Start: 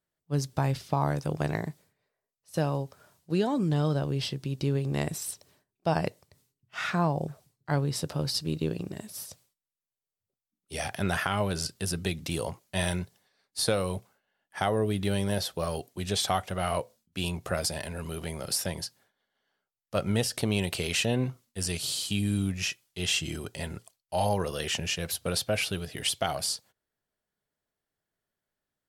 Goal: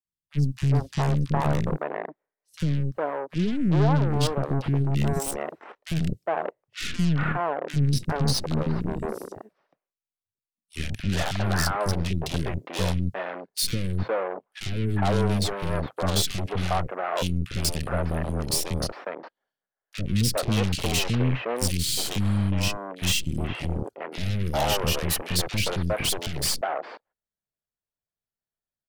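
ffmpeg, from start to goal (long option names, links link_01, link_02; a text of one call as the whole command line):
ffmpeg -i in.wav -filter_complex "[0:a]afwtdn=0.01,asoftclip=type=tanh:threshold=-22.5dB,lowshelf=frequency=110:gain=6.5,aeval=exprs='0.112*(cos(1*acos(clip(val(0)/0.112,-1,1)))-cos(1*PI/2))+0.0178*(cos(8*acos(clip(val(0)/0.112,-1,1)))-cos(8*PI/2))':channel_layout=same,asettb=1/sr,asplit=3[link_01][link_02][link_03];[link_01]atrim=end=24.394[link_04];[link_02]atrim=start=24.39:end=25.32,asetpts=PTS-STARTPTS,afade=type=in:duration=0.004:curve=qsin,afade=type=out:start_time=0.926:duration=0.004:curve=qsin,equalizer=frequency=13000:width_type=o:width=0.49:gain=8[link_05];[link_03]atrim=start=25.316[link_06];[link_04][link_05]acrossfade=duration=0.004:curve1=hsin:curve2=qsin[link_07];[link_07][link_06]acrossfade=duration=0.004:curve1=qsin:curve2=hsin,acrossover=split=340|2100[link_08][link_09][link_10];[link_08]adelay=50[link_11];[link_09]adelay=410[link_12];[link_11][link_12][link_10]amix=inputs=3:normalize=0,volume=5.5dB" out.wav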